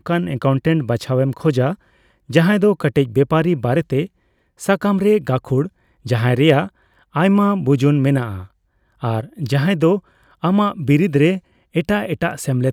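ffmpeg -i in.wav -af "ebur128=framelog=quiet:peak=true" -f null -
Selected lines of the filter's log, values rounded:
Integrated loudness:
  I:         -17.9 LUFS
  Threshold: -28.4 LUFS
Loudness range:
  LRA:         1.7 LU
  Threshold: -38.3 LUFS
  LRA low:   -19.1 LUFS
  LRA high:  -17.4 LUFS
True peak:
  Peak:       -1.9 dBFS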